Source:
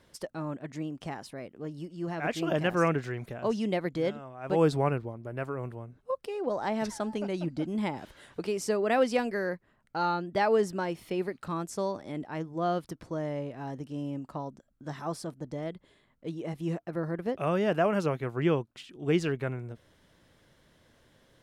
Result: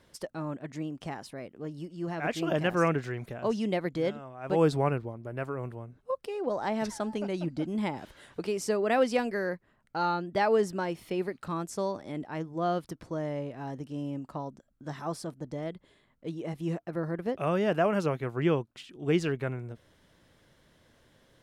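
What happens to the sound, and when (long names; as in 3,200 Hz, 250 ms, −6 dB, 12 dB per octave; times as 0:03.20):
nothing changes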